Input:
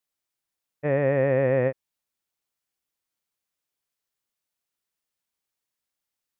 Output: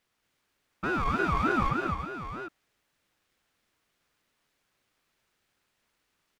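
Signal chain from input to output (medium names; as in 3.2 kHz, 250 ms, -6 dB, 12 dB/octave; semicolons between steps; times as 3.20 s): overdrive pedal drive 36 dB, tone 1.1 kHz, clips at -12 dBFS; multi-tap echo 228/339/757 ms -4/-10/-9.5 dB; ring modulator with a swept carrier 740 Hz, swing 25%, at 3.3 Hz; trim -7 dB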